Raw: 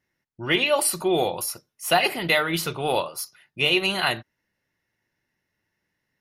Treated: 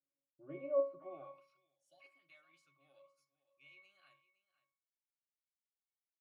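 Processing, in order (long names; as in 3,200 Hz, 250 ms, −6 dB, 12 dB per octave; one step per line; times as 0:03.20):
high-pass filter 120 Hz
parametric band 1,700 Hz +7 dB 0.55 octaves
single-tap delay 510 ms −16.5 dB
band-pass filter sweep 480 Hz → 7,400 Hz, 0:00.93–0:01.76
resonances in every octave C#, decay 0.37 s
gain on a spectral selection 0:01.76–0:02.00, 930–2,900 Hz −27 dB
level +4 dB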